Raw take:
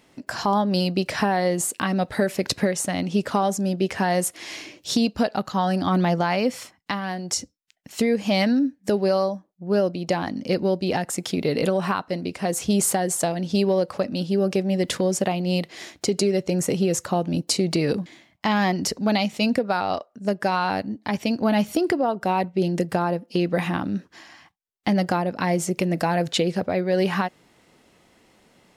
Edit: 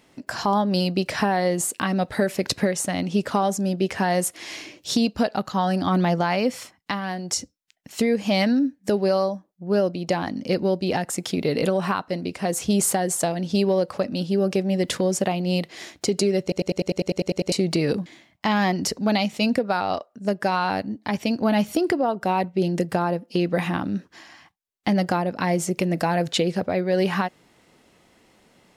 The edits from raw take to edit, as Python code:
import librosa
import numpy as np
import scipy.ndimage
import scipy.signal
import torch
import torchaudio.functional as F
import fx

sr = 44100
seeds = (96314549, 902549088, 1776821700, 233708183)

y = fx.edit(x, sr, fx.stutter_over(start_s=16.42, slice_s=0.1, count=11), tone=tone)